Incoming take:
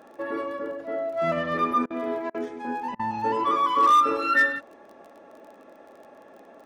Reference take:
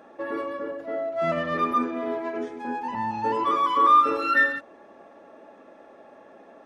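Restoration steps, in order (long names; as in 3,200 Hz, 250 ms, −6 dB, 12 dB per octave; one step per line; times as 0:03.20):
clipped peaks rebuilt −13.5 dBFS
click removal
repair the gap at 0:01.86/0:02.30/0:02.95, 43 ms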